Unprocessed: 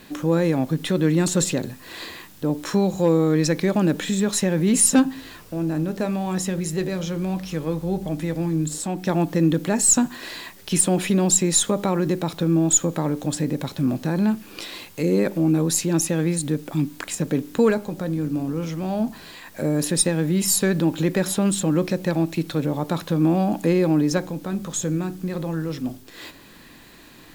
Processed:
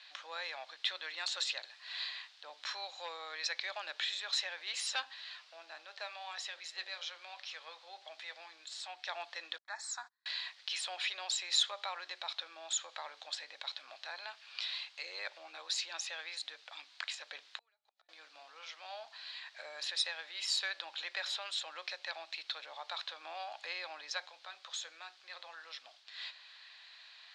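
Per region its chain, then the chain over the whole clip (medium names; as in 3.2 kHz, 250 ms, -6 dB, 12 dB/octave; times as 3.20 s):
9.58–10.26 s: treble shelf 8.5 kHz -9.5 dB + gate -28 dBFS, range -39 dB + static phaser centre 1.2 kHz, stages 4
17.58–18.09 s: high-pass 79 Hz + comb of notches 530 Hz + inverted gate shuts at -19 dBFS, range -38 dB
whole clip: elliptic band-pass 660–4200 Hz, stop band 60 dB; differentiator; trim +4.5 dB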